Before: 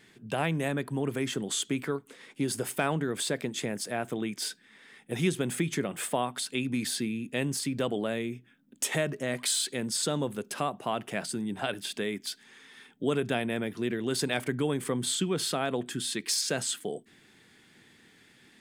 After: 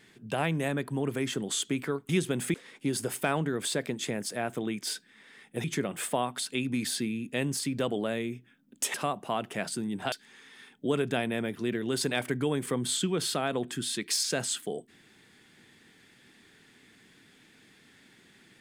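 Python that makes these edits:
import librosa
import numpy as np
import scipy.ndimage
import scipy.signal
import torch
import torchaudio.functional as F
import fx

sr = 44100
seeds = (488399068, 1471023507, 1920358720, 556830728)

y = fx.edit(x, sr, fx.move(start_s=5.19, length_s=0.45, to_s=2.09),
    fx.cut(start_s=8.94, length_s=1.57),
    fx.cut(start_s=11.69, length_s=0.61), tone=tone)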